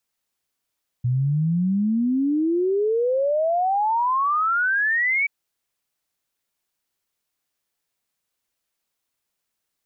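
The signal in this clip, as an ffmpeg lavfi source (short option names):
-f lavfi -i "aevalsrc='0.126*clip(min(t,4.23-t)/0.01,0,1)*sin(2*PI*120*4.23/log(2300/120)*(exp(log(2300/120)*t/4.23)-1))':d=4.23:s=44100"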